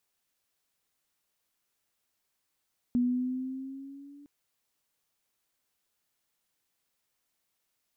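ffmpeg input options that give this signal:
-f lavfi -i "aevalsrc='pow(10,(-22-27*t/1.31)/20)*sin(2*PI*243*1.31/(3*log(2)/12)*(exp(3*log(2)/12*t/1.31)-1))':d=1.31:s=44100"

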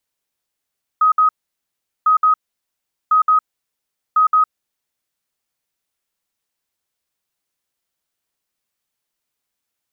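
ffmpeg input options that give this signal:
-f lavfi -i "aevalsrc='0.335*sin(2*PI*1260*t)*clip(min(mod(mod(t,1.05),0.17),0.11-mod(mod(t,1.05),0.17))/0.005,0,1)*lt(mod(t,1.05),0.34)':d=4.2:s=44100"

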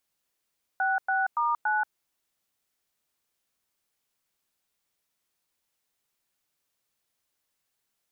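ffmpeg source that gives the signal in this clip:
-f lavfi -i "aevalsrc='0.0531*clip(min(mod(t,0.284),0.182-mod(t,0.284))/0.002,0,1)*(eq(floor(t/0.284),0)*(sin(2*PI*770*mod(t,0.284))+sin(2*PI*1477*mod(t,0.284)))+eq(floor(t/0.284),1)*(sin(2*PI*770*mod(t,0.284))+sin(2*PI*1477*mod(t,0.284)))+eq(floor(t/0.284),2)*(sin(2*PI*941*mod(t,0.284))+sin(2*PI*1209*mod(t,0.284)))+eq(floor(t/0.284),3)*(sin(2*PI*852*mod(t,0.284))+sin(2*PI*1477*mod(t,0.284))))':d=1.136:s=44100"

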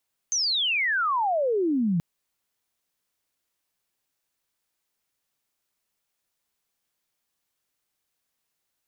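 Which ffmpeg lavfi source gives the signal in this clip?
-f lavfi -i "aevalsrc='pow(10,(-22+1.5*t/1.68)/20)*sin(2*PI*6400*1.68/log(160/6400)*(exp(log(160/6400)*t/1.68)-1))':d=1.68:s=44100"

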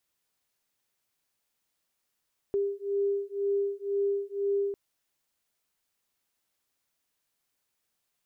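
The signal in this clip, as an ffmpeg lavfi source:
-f lavfi -i "aevalsrc='0.0335*(sin(2*PI*399*t)+sin(2*PI*401*t))':d=2.2:s=44100"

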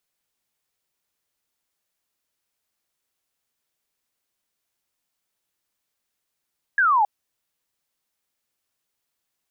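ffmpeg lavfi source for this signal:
-f lavfi -i "aevalsrc='0.178*clip(t/0.002,0,1)*clip((0.27-t)/0.002,0,1)*sin(2*PI*1700*0.27/log(790/1700)*(exp(log(790/1700)*t/0.27)-1))':d=0.27:s=44100"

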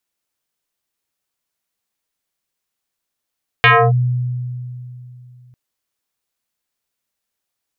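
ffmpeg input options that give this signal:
-f lavfi -i "aevalsrc='0.531*pow(10,-3*t/2.99)*sin(2*PI*124*t+4.7*clip(1-t/0.28,0,1)*sin(2*PI*4.7*124*t))':d=1.9:s=44100"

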